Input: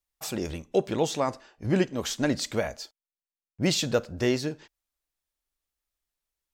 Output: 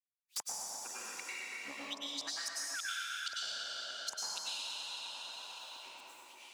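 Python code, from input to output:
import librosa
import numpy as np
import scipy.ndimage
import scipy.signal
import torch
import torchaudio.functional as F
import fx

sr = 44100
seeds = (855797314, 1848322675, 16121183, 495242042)

p1 = scipy.signal.lfilter([1.0, -0.97], [1.0], x)
p2 = fx.spec_box(p1, sr, start_s=0.34, length_s=1.58, low_hz=620.0, high_hz=9600.0, gain_db=-13)
p3 = fx.high_shelf(p2, sr, hz=2200.0, db=9.5)
p4 = fx.auto_swell(p3, sr, attack_ms=101.0)
p5 = fx.level_steps(p4, sr, step_db=23)
p6 = p4 + F.gain(torch.from_numpy(p5), -2.0).numpy()
p7 = fx.filter_lfo_bandpass(p6, sr, shape='saw_up', hz=3.7, low_hz=610.0, high_hz=4800.0, q=6.1)
p8 = fx.spec_paint(p7, sr, seeds[0], shape='fall', start_s=2.49, length_s=0.44, low_hz=350.0, high_hz=1100.0, level_db=-45.0)
p9 = fx.granulator(p8, sr, seeds[1], grain_ms=166.0, per_s=3.7, spray_ms=651.0, spread_st=12)
p10 = fx.gate_flip(p9, sr, shuts_db=-34.0, range_db=-30)
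p11 = p10 + fx.echo_tape(p10, sr, ms=116, feedback_pct=81, wet_db=-5.5, lp_hz=4000.0, drive_db=33.0, wow_cents=5, dry=0)
p12 = fx.rev_plate(p11, sr, seeds[2], rt60_s=1.9, hf_ratio=0.9, predelay_ms=85, drr_db=-9.0)
p13 = fx.band_squash(p12, sr, depth_pct=100)
y = F.gain(torch.from_numpy(p13), 9.0).numpy()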